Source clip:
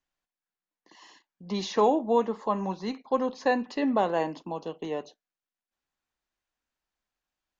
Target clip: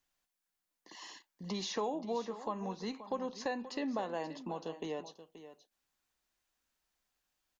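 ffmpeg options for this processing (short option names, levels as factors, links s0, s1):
-filter_complex "[0:a]highshelf=f=4100:g=7.5,acompressor=threshold=0.00891:ratio=2.5,asplit=2[s0][s1];[s1]aecho=0:1:529:0.211[s2];[s0][s2]amix=inputs=2:normalize=0,volume=1.12"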